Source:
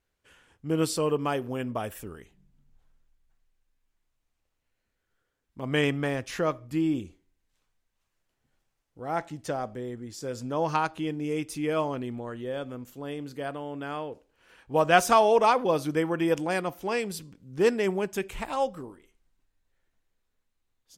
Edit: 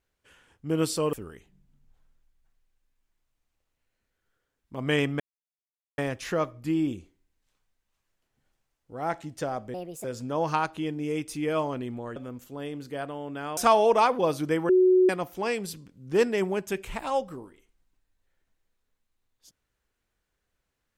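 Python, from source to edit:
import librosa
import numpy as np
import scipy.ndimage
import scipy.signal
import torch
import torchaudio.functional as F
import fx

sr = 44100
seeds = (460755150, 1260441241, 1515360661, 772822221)

y = fx.edit(x, sr, fx.cut(start_s=1.13, length_s=0.85),
    fx.insert_silence(at_s=6.05, length_s=0.78),
    fx.speed_span(start_s=9.81, length_s=0.44, speed=1.46),
    fx.cut(start_s=12.37, length_s=0.25),
    fx.cut(start_s=14.03, length_s=1.0),
    fx.bleep(start_s=16.15, length_s=0.4, hz=369.0, db=-15.5), tone=tone)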